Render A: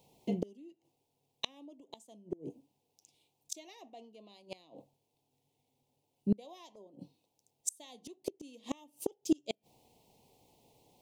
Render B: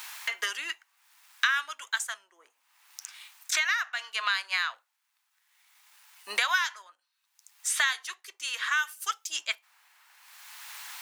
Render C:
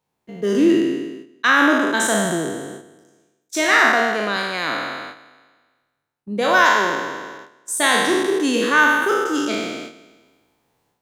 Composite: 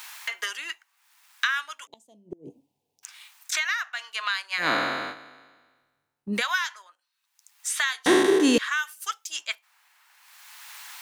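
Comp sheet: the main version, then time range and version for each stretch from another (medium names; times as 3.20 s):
B
1.87–3.03 s: from A
4.62–6.37 s: from C, crossfade 0.10 s
8.06–8.58 s: from C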